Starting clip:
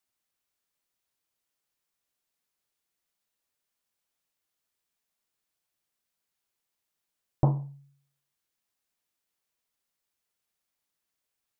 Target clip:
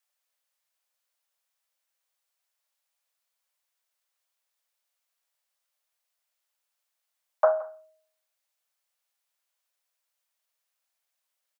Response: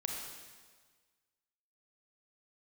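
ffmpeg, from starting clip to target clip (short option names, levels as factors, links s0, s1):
-af "afreqshift=490,aecho=1:1:172:0.106,volume=1.26"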